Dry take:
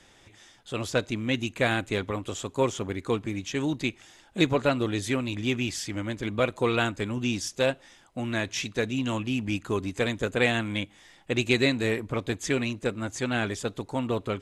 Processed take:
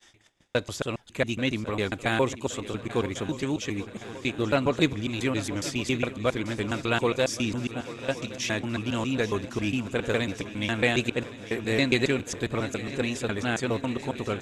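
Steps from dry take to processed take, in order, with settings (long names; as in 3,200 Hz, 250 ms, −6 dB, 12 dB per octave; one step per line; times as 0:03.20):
slices reordered back to front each 137 ms, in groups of 4
noise gate −53 dBFS, range −20 dB
feedback echo with a long and a short gap by turns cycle 1,117 ms, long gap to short 3 to 1, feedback 64%, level −15.5 dB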